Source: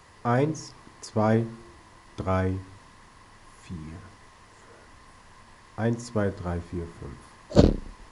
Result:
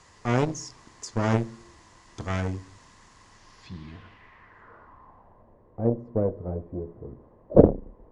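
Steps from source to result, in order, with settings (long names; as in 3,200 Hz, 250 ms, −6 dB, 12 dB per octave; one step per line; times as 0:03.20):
harmonic generator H 7 −31 dB, 8 −16 dB, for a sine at −1 dBFS
low-pass filter sweep 7,100 Hz → 530 Hz, 0:03.31–0:05.56
level −1 dB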